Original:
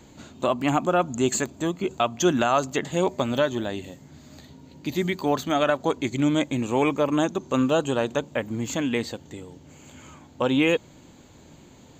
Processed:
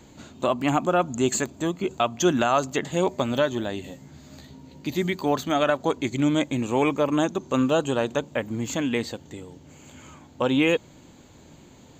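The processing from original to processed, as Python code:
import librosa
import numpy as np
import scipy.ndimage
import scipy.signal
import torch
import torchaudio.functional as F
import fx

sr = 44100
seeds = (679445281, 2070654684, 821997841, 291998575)

y = fx.doubler(x, sr, ms=15.0, db=-6.5, at=(3.83, 4.87))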